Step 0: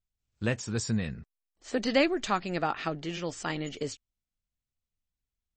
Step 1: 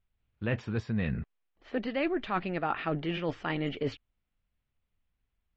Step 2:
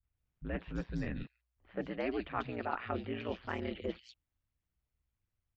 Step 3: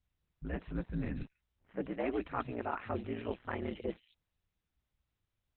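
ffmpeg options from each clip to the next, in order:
-af "areverse,acompressor=threshold=-37dB:ratio=6,areverse,lowpass=f=3.1k:w=0.5412,lowpass=f=3.1k:w=1.3066,volume=9dB"
-filter_complex "[0:a]aeval=exprs='val(0)*sin(2*PI*60*n/s)':c=same,acrossover=split=150|3100[a][b][c];[b]adelay=30[d];[c]adelay=170[e];[a][d][e]amix=inputs=3:normalize=0,volume=-2.5dB"
-af "highshelf=f=3.5k:g=-7.5,volume=1.5dB" -ar 48000 -c:a libopus -b:a 8k

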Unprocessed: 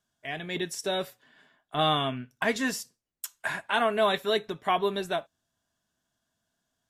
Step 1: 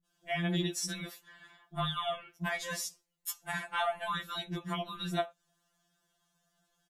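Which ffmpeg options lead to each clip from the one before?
-filter_complex "[0:a]acrossover=split=300[a][b];[b]adelay=50[c];[a][c]amix=inputs=2:normalize=0,acrossover=split=130[d][e];[e]acompressor=threshold=-36dB:ratio=5[f];[d][f]amix=inputs=2:normalize=0,afftfilt=real='re*2.83*eq(mod(b,8),0)':imag='im*2.83*eq(mod(b,8),0)':win_size=2048:overlap=0.75,volume=6.5dB"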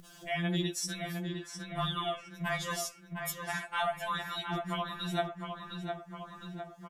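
-filter_complex "[0:a]asplit=2[a][b];[b]adelay=709,lowpass=f=2.6k:p=1,volume=-5.5dB,asplit=2[c][d];[d]adelay=709,lowpass=f=2.6k:p=1,volume=0.46,asplit=2[e][f];[f]adelay=709,lowpass=f=2.6k:p=1,volume=0.46,asplit=2[g][h];[h]adelay=709,lowpass=f=2.6k:p=1,volume=0.46,asplit=2[i][j];[j]adelay=709,lowpass=f=2.6k:p=1,volume=0.46,asplit=2[k][l];[l]adelay=709,lowpass=f=2.6k:p=1,volume=0.46[m];[c][e][g][i][k][m]amix=inputs=6:normalize=0[n];[a][n]amix=inputs=2:normalize=0,acompressor=mode=upward:threshold=-36dB:ratio=2.5"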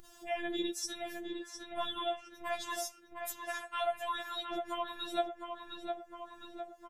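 -af "afftfilt=real='hypot(re,im)*cos(PI*b)':imag='0':win_size=512:overlap=0.75,lowshelf=f=260:g=5"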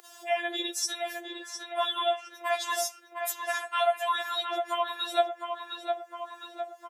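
-af "highpass=f=470:w=0.5412,highpass=f=470:w=1.3066,volume=8.5dB"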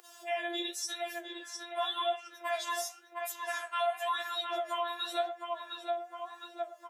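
-filter_complex "[0:a]flanger=delay=8.3:depth=6.3:regen=68:speed=0.92:shape=sinusoidal,asplit=2[a][b];[b]alimiter=level_in=3dB:limit=-24dB:level=0:latency=1,volume=-3dB,volume=2.5dB[c];[a][c]amix=inputs=2:normalize=0,volume=-6.5dB"

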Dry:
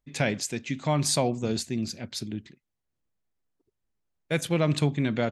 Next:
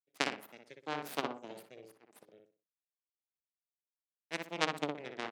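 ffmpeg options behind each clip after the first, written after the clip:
-filter_complex "[0:a]aeval=exprs='0.316*(cos(1*acos(clip(val(0)/0.316,-1,1)))-cos(1*PI/2))+0.158*(cos(3*acos(clip(val(0)/0.316,-1,1)))-cos(3*PI/2))+0.0316*(cos(5*acos(clip(val(0)/0.316,-1,1)))-cos(5*PI/2))+0.00891*(cos(6*acos(clip(val(0)/0.316,-1,1)))-cos(6*PI/2))':c=same,highpass=f=190:w=0.5412,highpass=f=190:w=1.3066,asplit=2[a][b];[b]adelay=61,lowpass=f=1.9k:p=1,volume=-3dB,asplit=2[c][d];[d]adelay=61,lowpass=f=1.9k:p=1,volume=0.31,asplit=2[e][f];[f]adelay=61,lowpass=f=1.9k:p=1,volume=0.31,asplit=2[g][h];[h]adelay=61,lowpass=f=1.9k:p=1,volume=0.31[i];[a][c][e][g][i]amix=inputs=5:normalize=0"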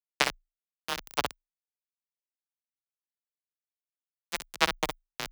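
-af "equalizer=f=120:w=0.89:g=2.5,aeval=exprs='val(0)*gte(abs(val(0)),0.0422)':c=same,afreqshift=27,volume=7.5dB"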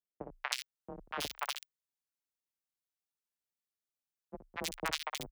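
-filter_complex "[0:a]acompressor=threshold=-29dB:ratio=4,acrossover=split=670|2300[a][b][c];[b]adelay=240[d];[c]adelay=320[e];[a][d][e]amix=inputs=3:normalize=0"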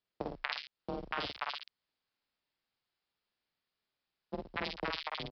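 -filter_complex "[0:a]acompressor=threshold=-43dB:ratio=8,aresample=11025,acrusher=bits=5:mode=log:mix=0:aa=0.000001,aresample=44100,asplit=2[a][b];[b]adelay=49,volume=-3.5dB[c];[a][c]amix=inputs=2:normalize=0,volume=9dB"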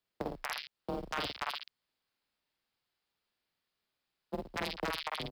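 -filter_complex "[0:a]acrossover=split=220[a][b];[b]aeval=exprs='0.0447*(abs(mod(val(0)/0.0447+3,4)-2)-1)':c=same[c];[a][c]amix=inputs=2:normalize=0,acrusher=bits=8:mode=log:mix=0:aa=0.000001,volume=2dB"

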